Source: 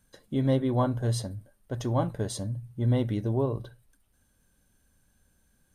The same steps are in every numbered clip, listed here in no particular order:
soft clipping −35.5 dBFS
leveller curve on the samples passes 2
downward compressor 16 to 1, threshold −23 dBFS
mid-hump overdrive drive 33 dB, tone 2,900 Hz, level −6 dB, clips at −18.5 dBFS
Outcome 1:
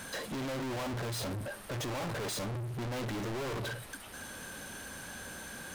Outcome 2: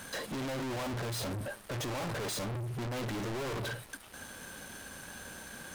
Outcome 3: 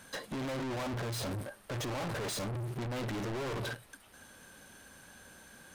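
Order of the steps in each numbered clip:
downward compressor, then mid-hump overdrive, then soft clipping, then leveller curve on the samples
mid-hump overdrive, then leveller curve on the samples, then soft clipping, then downward compressor
leveller curve on the samples, then downward compressor, then mid-hump overdrive, then soft clipping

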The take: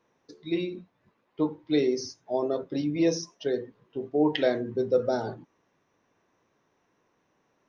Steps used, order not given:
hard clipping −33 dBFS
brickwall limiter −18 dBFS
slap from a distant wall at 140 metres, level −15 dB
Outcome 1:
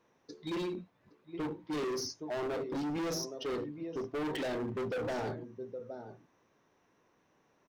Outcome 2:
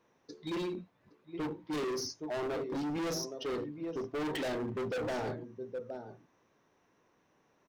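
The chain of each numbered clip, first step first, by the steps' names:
brickwall limiter, then slap from a distant wall, then hard clipping
slap from a distant wall, then hard clipping, then brickwall limiter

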